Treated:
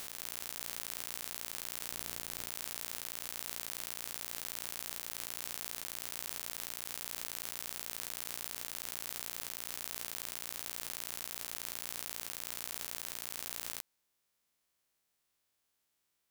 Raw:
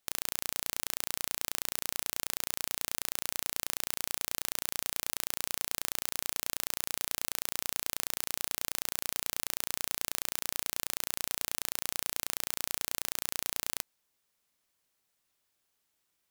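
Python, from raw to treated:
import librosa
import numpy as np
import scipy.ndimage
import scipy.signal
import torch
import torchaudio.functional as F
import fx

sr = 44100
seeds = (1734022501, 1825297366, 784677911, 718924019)

y = fx.spec_steps(x, sr, hold_ms=200)
y = fx.low_shelf(y, sr, hz=400.0, db=6.5, at=(1.91, 2.49))
y = y * 10.0 ** (-1.0 / 20.0)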